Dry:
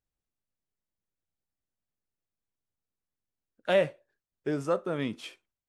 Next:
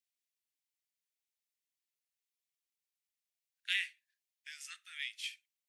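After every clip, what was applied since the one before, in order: steep high-pass 1.9 kHz 48 dB/octave; trim +2.5 dB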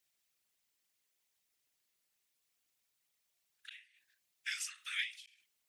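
whisper effect; inverted gate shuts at -29 dBFS, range -30 dB; endings held to a fixed fall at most 160 dB/s; trim +10 dB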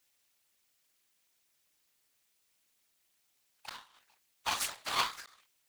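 cycle switcher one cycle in 2, inverted; trim +6.5 dB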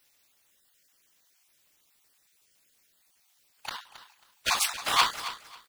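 random holes in the spectrogram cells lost 22%; feedback delay 271 ms, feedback 20%, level -13.5 dB; trim +8.5 dB

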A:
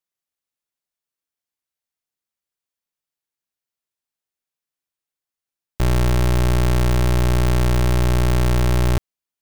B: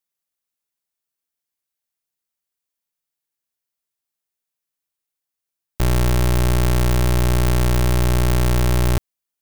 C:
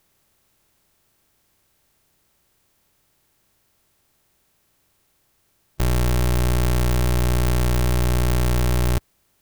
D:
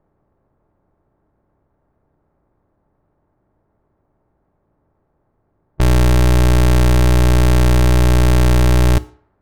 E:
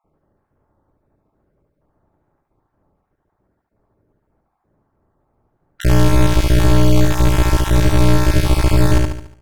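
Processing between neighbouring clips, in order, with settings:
treble shelf 7.7 kHz +6.5 dB
spectral levelling over time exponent 0.6; trim -3 dB
median filter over 15 samples; FDN reverb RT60 0.56 s, low-frequency decay 0.75×, high-frequency decay 0.8×, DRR 15 dB; level-controlled noise filter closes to 940 Hz, open at -21 dBFS; trim +7.5 dB
random holes in the spectrogram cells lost 36%; on a send: feedback delay 72 ms, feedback 45%, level -3 dB

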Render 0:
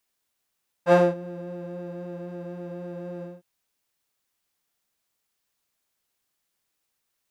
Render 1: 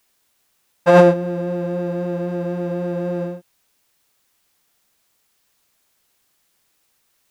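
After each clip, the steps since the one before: loudness maximiser +13.5 dB; trim -1 dB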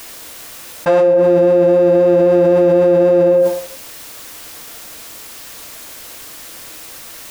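on a send at -7 dB: resonant low shelf 680 Hz +7 dB, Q 1.5 + reverberation RT60 0.60 s, pre-delay 3 ms; on the sum: level flattener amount 100%; trim -8.5 dB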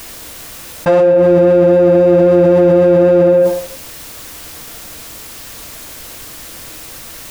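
bass shelf 200 Hz +10.5 dB; in parallel at -6 dB: saturation -13.5 dBFS, distortion -9 dB; on the sum: trim -1.5 dB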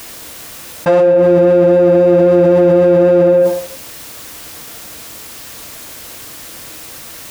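high-pass 87 Hz 6 dB/octave

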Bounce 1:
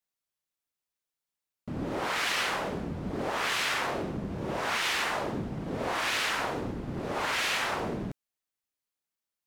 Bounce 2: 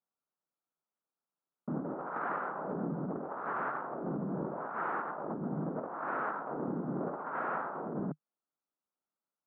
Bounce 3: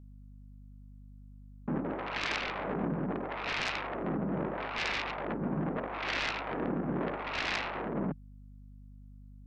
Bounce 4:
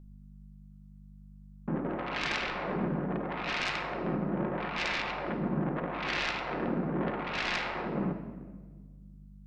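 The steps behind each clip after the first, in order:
Chebyshev band-pass 150–1400 Hz, order 4; compressor with a negative ratio -36 dBFS, ratio -0.5
self-modulated delay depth 0.53 ms; hum 50 Hz, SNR 15 dB; trim +3.5 dB
simulated room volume 1400 m³, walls mixed, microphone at 0.93 m

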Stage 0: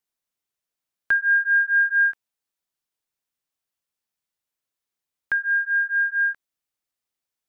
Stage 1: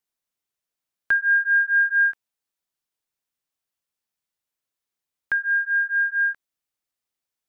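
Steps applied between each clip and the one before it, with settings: no audible change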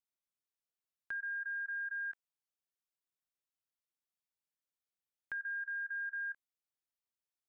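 level held to a coarse grid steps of 15 dB; trim -8.5 dB

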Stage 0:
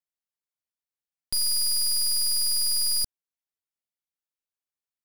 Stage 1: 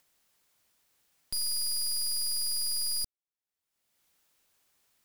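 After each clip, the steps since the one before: upward compressor, threshold -43 dBFS; trim -6.5 dB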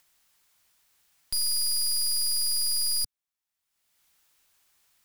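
graphic EQ 125/250/500 Hz -3/-5/-6 dB; trim +4.5 dB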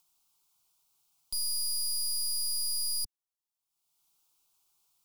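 static phaser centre 360 Hz, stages 8; trim -4.5 dB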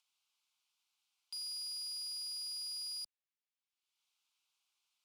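band-pass filter 2.5 kHz, Q 1.4; trim +1 dB

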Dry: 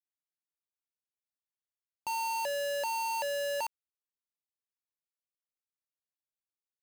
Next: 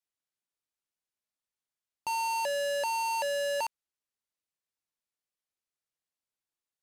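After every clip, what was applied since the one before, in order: low-pass 12 kHz 12 dB/octave; trim +2.5 dB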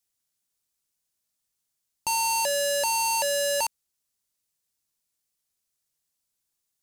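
tone controls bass +7 dB, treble +11 dB; trim +3.5 dB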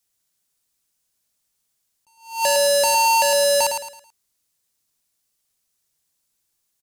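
feedback delay 109 ms, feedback 33%, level -6 dB; attacks held to a fixed rise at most 140 dB/s; trim +6 dB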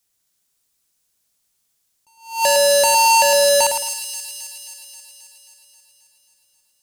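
feedback echo behind a high-pass 267 ms, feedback 65%, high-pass 3.1 kHz, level -7 dB; trim +3 dB

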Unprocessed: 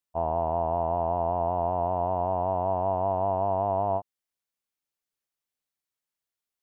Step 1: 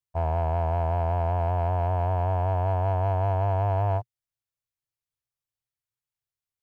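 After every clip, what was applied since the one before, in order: resonant low shelf 160 Hz +9 dB, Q 3; waveshaping leveller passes 1; trim -3.5 dB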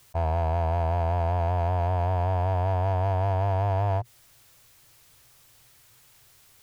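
in parallel at -6.5 dB: overload inside the chain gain 34.5 dB; on the sum: level flattener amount 50%; trim -1.5 dB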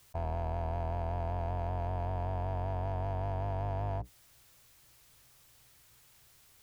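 octave divider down 1 oct, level -4 dB; peak limiter -23.5 dBFS, peak gain reduction 6.5 dB; trim -5 dB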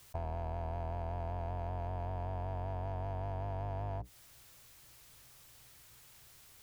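compression 4:1, threshold -40 dBFS, peak gain reduction 7.5 dB; trim +3 dB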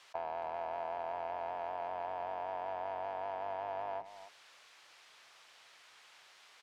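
band-pass 670–3900 Hz; speakerphone echo 270 ms, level -12 dB; trim +6.5 dB

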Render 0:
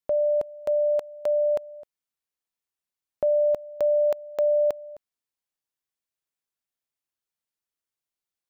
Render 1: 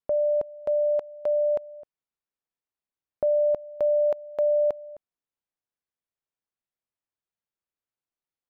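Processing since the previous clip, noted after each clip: low-pass 1.4 kHz 6 dB/octave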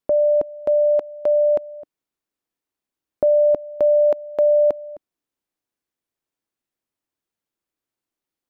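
peaking EQ 300 Hz +8 dB 0.84 oct; trim +5.5 dB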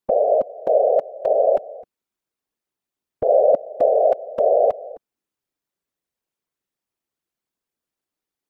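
whisper effect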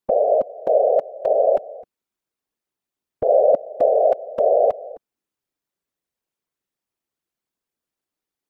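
no audible change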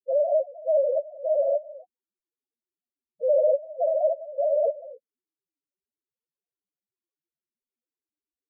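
loudest bins only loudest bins 1; trim +4 dB

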